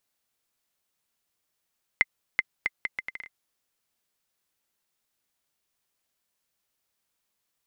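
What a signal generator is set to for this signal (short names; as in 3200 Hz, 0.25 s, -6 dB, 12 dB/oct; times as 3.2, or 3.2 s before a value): bouncing ball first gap 0.38 s, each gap 0.71, 2070 Hz, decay 33 ms -6.5 dBFS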